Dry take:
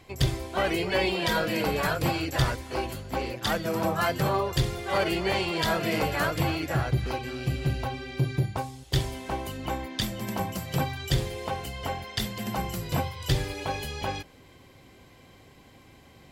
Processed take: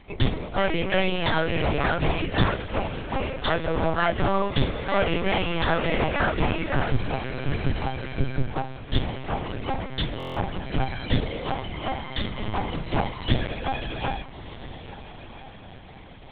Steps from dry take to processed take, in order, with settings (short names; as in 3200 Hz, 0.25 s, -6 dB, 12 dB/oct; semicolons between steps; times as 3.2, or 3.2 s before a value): added harmonics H 2 -34 dB, 6 -43 dB, 8 -43 dB, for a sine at -12.5 dBFS; diffused feedback echo 1.391 s, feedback 43%, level -14 dB; LPC vocoder at 8 kHz pitch kept; stuck buffer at 10.18, samples 1024, times 7; gain +3.5 dB